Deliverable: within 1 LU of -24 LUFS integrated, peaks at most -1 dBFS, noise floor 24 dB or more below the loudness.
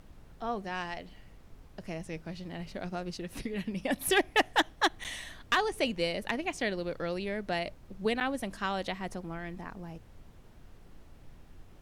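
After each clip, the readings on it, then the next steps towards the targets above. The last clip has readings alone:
dropouts 2; longest dropout 7.9 ms; noise floor -55 dBFS; noise floor target -57 dBFS; loudness -33.0 LUFS; peak -16.5 dBFS; loudness target -24.0 LUFS
-> interpolate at 5.04/8.2, 7.9 ms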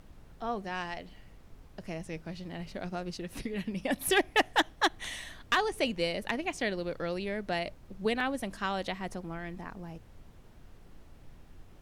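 dropouts 0; noise floor -55 dBFS; noise floor target -57 dBFS
-> noise print and reduce 6 dB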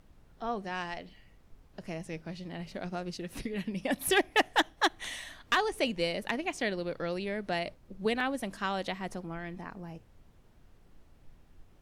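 noise floor -60 dBFS; loudness -33.0 LUFS; peak -16.5 dBFS; loudness target -24.0 LUFS
-> gain +9 dB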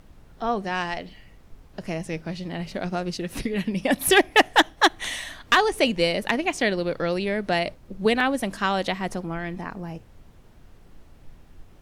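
loudness -24.0 LUFS; peak -7.5 dBFS; noise floor -51 dBFS

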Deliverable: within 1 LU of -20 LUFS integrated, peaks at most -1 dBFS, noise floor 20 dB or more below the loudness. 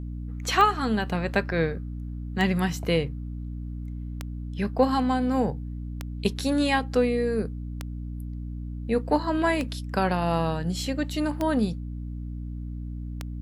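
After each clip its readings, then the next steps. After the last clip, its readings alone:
clicks 8; hum 60 Hz; harmonics up to 300 Hz; hum level -31 dBFS; loudness -27.5 LUFS; peak -8.0 dBFS; loudness target -20.0 LUFS
-> de-click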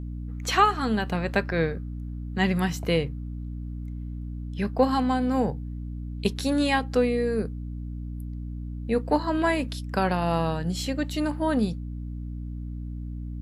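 clicks 0; hum 60 Hz; harmonics up to 300 Hz; hum level -31 dBFS
-> de-hum 60 Hz, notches 5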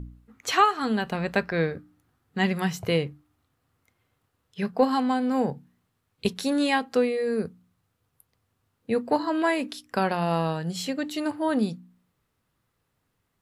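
hum none; loudness -26.5 LUFS; peak -8.5 dBFS; loudness target -20.0 LUFS
-> gain +6.5 dB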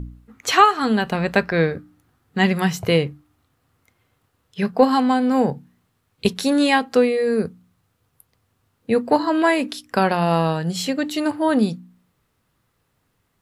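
loudness -20.0 LUFS; peak -2.0 dBFS; noise floor -70 dBFS

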